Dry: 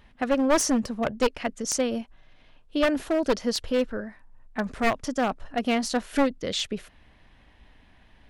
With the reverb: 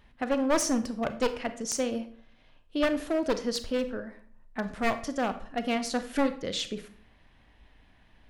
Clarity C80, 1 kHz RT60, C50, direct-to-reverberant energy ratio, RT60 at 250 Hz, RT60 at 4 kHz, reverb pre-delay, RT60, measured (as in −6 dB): 17.0 dB, 0.50 s, 13.0 dB, 10.0 dB, 0.65 s, 0.40 s, 29 ms, 0.55 s